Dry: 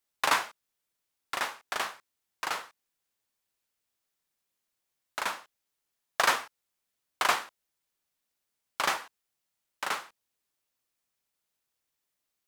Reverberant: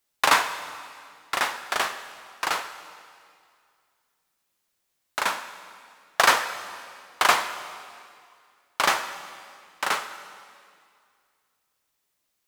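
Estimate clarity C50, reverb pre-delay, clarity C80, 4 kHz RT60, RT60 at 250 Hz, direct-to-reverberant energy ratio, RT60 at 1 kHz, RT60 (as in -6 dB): 10.5 dB, 7 ms, 11.5 dB, 2.1 s, 2.2 s, 9.5 dB, 2.2 s, 2.2 s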